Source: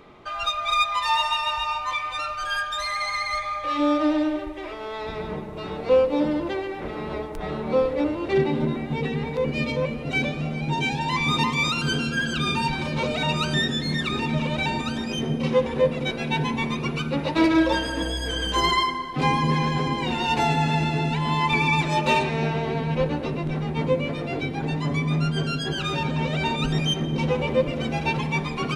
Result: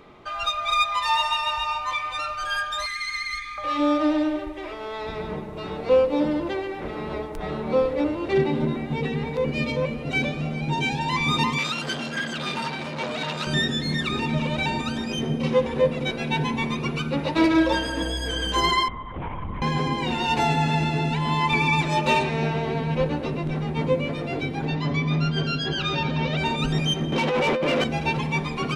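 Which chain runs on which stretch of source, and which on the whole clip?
2.86–3.58 Chebyshev band-stop 280–1700 Hz + bell 120 Hz -12.5 dB 0.89 oct
11.58–13.47 HPF 150 Hz + core saturation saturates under 1700 Hz
18.88–19.62 LPC vocoder at 8 kHz whisper + compressor 3:1, threshold -29 dBFS + air absorption 450 m
24.66–26.38 LPF 5300 Hz 24 dB/oct + high shelf 3700 Hz +6 dB
27.12–27.84 HPF 150 Hz 24 dB/oct + negative-ratio compressor -27 dBFS + overdrive pedal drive 20 dB, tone 3200 Hz, clips at -13.5 dBFS
whole clip: dry

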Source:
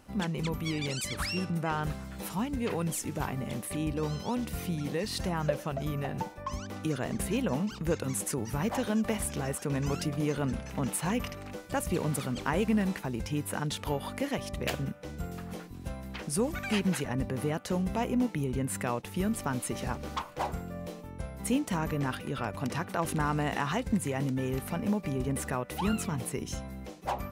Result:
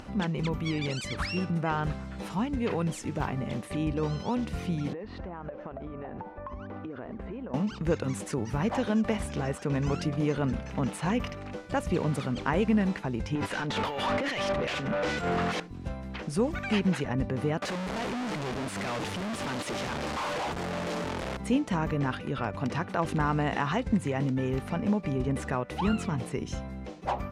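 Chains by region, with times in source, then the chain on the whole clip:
4.93–7.54 LPF 1500 Hz + bell 140 Hz -13 dB 0.61 oct + compressor 10:1, threshold -37 dBFS
13.35–15.6 negative-ratio compressor -41 dBFS + harmonic tremolo 2.5 Hz, crossover 1700 Hz + overdrive pedal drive 34 dB, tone 3600 Hz, clips at -22.5 dBFS
17.62–21.37 infinite clipping + low shelf 110 Hz -12 dB
whole clip: LPF 8500 Hz 12 dB/oct; high shelf 6300 Hz -12 dB; upward compressor, threshold -39 dBFS; gain +2.5 dB

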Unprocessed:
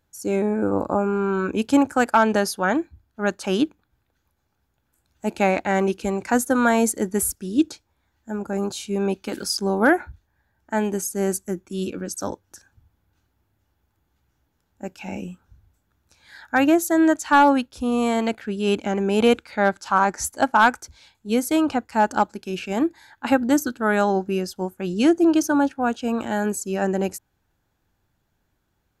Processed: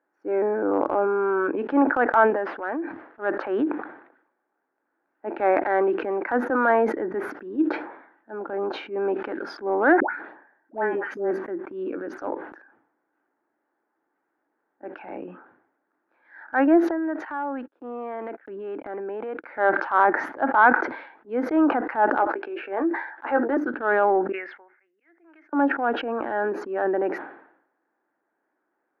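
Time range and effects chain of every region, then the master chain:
2.3–3.22 CVSD 64 kbps + compressor 3:1, threshold -26 dBFS
10–11.31 HPF 120 Hz + dispersion highs, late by 0.118 s, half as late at 990 Hz
16.9–19.44 gate -35 dBFS, range -59 dB + compressor 10:1, threshold -26 dBFS
22.16–23.57 HPF 320 Hz 24 dB/oct + doubler 15 ms -8 dB
24.32–25.53 band-pass 2100 Hz, Q 13 + auto swell 0.288 s
whole clip: elliptic band-pass 300–1800 Hz, stop band 60 dB; transient shaper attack -7 dB, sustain +4 dB; sustainer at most 81 dB/s; gain +2 dB

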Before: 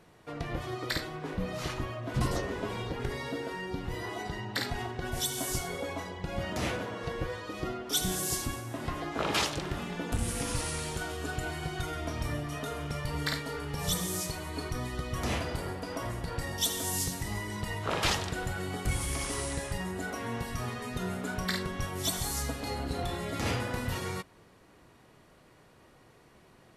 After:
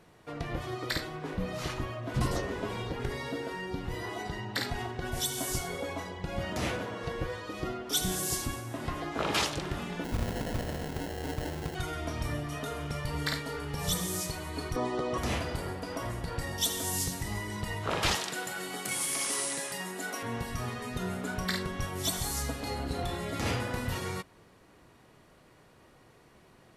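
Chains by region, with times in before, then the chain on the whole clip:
10.04–11.75 LPF 11000 Hz + sample-rate reducer 1200 Hz
14.76–15.18 BPF 150–7100 Hz + band shelf 550 Hz +10 dB 2.3 oct + careless resampling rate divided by 2×, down none, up filtered
18.15–20.23 HPF 160 Hz 24 dB/oct + tilt +2 dB/oct
whole clip: dry

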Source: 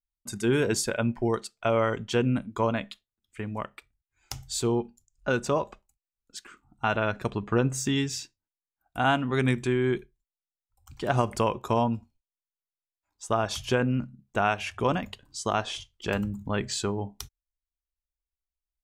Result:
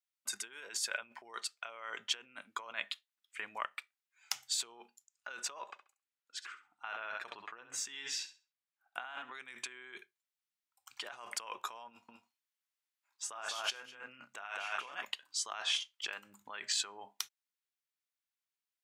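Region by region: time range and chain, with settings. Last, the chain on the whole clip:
5.62–9.35 LPF 3700 Hz 6 dB/oct + flutter echo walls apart 11.5 m, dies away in 0.32 s
11.88–15.05 doubler 30 ms -7 dB + echo 0.205 s -4.5 dB
whole clip: negative-ratio compressor -33 dBFS, ratio -1; HPF 1500 Hz 12 dB/oct; high shelf 3800 Hz -8 dB; gain +1 dB

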